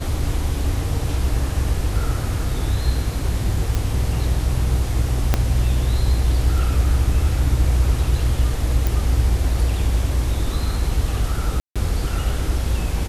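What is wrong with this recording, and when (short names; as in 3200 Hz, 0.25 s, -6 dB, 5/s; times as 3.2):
3.75 pop
5.34 pop -3 dBFS
8.87 pop
11.6–11.76 gap 0.156 s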